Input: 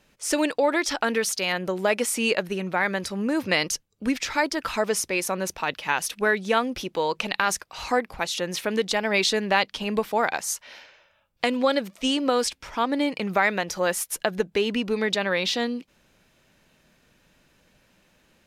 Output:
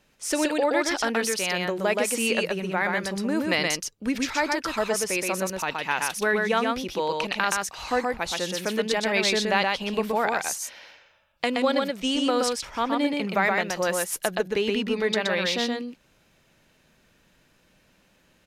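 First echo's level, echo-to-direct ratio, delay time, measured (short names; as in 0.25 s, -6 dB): -3.0 dB, -3.0 dB, 0.123 s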